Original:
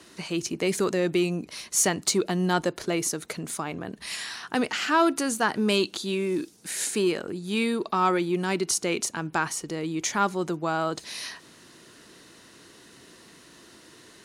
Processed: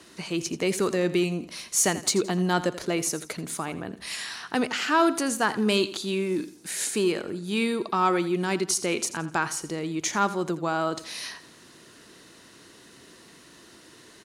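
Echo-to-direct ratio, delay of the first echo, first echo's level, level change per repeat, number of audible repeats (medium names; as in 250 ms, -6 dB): -14.5 dB, 84 ms, -15.0 dB, -9.0 dB, 3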